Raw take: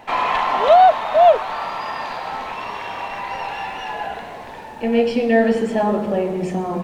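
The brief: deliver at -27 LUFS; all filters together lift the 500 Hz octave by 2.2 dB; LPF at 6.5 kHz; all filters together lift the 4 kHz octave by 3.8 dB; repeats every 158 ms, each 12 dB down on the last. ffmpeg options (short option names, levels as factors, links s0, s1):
-af "lowpass=6500,equalizer=f=500:t=o:g=3,equalizer=f=4000:t=o:g=5.5,aecho=1:1:158|316|474:0.251|0.0628|0.0157,volume=0.316"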